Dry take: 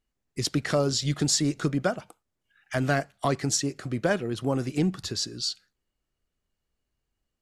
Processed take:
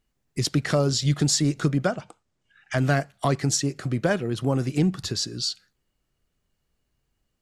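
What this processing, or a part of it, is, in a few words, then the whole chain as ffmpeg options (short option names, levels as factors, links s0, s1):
parallel compression: -filter_complex "[0:a]asplit=2[s0][s1];[s1]acompressor=threshold=0.0126:ratio=6,volume=0.944[s2];[s0][s2]amix=inputs=2:normalize=0,asettb=1/sr,asplit=3[s3][s4][s5];[s3]atrim=end=1.874[s6];[s4]atrim=start=1.87:end=2.78,asetpts=PTS-STARTPTS,afade=t=in:d=0.004:c=qsin,afade=t=out:st=0.906:d=0.004:c=qsin,lowpass=f=8600:w=0.5412,lowpass=f=8600:w=1.3066[s7];[s5]atrim=start=2.776[s8];[s6][s7]acrossfade=d=0.004:c1=hsin:c2=qsin[s9];[s9][s8]acrossfade=d=0.004:c1=qsin:c2=hsin,equalizer=f=140:t=o:w=0.77:g=4.5"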